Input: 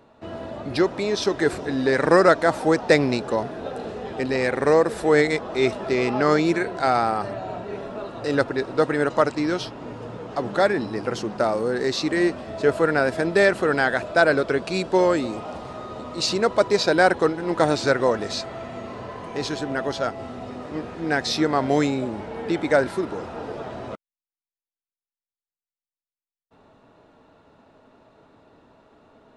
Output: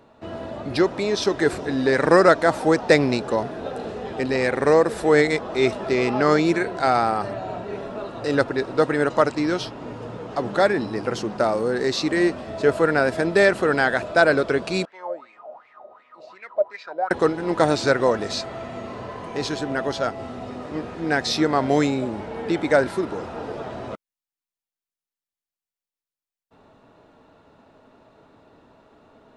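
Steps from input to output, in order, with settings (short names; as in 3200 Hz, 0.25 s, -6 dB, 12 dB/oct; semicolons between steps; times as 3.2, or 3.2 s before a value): 14.85–17.11 wah 2.7 Hz 580–2300 Hz, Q 8.8; gain +1 dB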